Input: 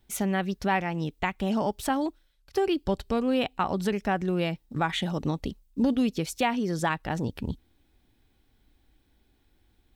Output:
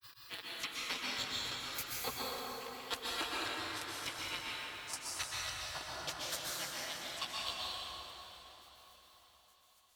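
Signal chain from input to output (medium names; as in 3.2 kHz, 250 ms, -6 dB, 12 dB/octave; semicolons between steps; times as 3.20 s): reverse spectral sustain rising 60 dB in 0.39 s; high-pass 270 Hz 12 dB/octave; spectral gate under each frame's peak -25 dB weak; compressor with a negative ratio -50 dBFS, ratio -0.5; peak limiter -38 dBFS, peak gain reduction 10.5 dB; tremolo saw down 7.9 Hz, depth 80%; granulator 146 ms, grains 3.5 per s, spray 16 ms, pitch spread up and down by 0 st; on a send: echo that smears into a reverb 562 ms, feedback 49%, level -15 dB; on the sum: plate-style reverb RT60 3.9 s, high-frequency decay 0.55×, pre-delay 110 ms, DRR -6 dB; trim +16 dB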